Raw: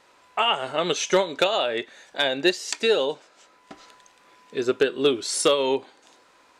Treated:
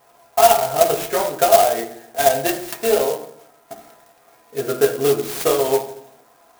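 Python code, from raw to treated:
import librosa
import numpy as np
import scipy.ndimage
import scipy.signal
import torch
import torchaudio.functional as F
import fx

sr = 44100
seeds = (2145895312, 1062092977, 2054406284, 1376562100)

y = fx.peak_eq(x, sr, hz=700.0, db=15.0, octaves=0.38)
y = fx.notch_comb(y, sr, f0_hz=190.0)
y = fx.rev_fdn(y, sr, rt60_s=0.67, lf_ratio=1.35, hf_ratio=0.4, size_ms=43.0, drr_db=0.5)
y = fx.clock_jitter(y, sr, seeds[0], jitter_ms=0.07)
y = F.gain(torch.from_numpy(y), -1.0).numpy()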